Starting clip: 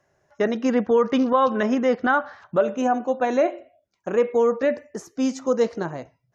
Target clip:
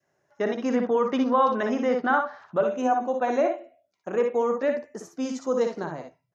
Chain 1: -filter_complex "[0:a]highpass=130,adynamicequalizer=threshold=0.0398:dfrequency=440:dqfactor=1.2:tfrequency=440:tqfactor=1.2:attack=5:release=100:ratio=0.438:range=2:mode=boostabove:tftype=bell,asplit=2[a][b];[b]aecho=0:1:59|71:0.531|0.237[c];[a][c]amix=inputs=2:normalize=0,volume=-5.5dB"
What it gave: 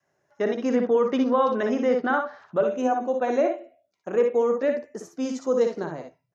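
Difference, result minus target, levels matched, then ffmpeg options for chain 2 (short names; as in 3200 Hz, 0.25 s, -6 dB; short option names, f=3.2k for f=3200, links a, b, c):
1000 Hz band -3.5 dB
-filter_complex "[0:a]highpass=130,adynamicequalizer=threshold=0.0398:dfrequency=900:dqfactor=1.2:tfrequency=900:tqfactor=1.2:attack=5:release=100:ratio=0.438:range=2:mode=boostabove:tftype=bell,asplit=2[a][b];[b]aecho=0:1:59|71:0.531|0.237[c];[a][c]amix=inputs=2:normalize=0,volume=-5.5dB"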